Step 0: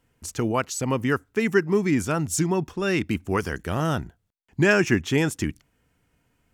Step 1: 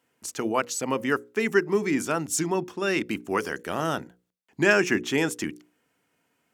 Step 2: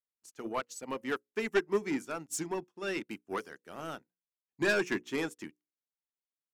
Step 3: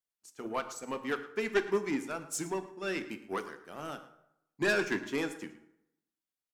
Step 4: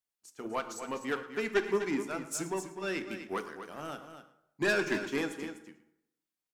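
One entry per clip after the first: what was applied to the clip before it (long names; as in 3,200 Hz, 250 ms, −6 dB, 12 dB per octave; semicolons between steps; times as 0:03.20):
high-pass filter 250 Hz 12 dB per octave; mains-hum notches 60/120/180/240/300/360/420/480/540 Hz
low-shelf EQ 62 Hz −12 dB; soft clipping −20 dBFS, distortion −10 dB; expander for the loud parts 2.5 to 1, over −48 dBFS
tape wow and flutter 22 cents; slap from a distant wall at 19 metres, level −17 dB; dense smooth reverb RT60 0.82 s, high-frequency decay 0.65×, DRR 10 dB
single-tap delay 250 ms −10 dB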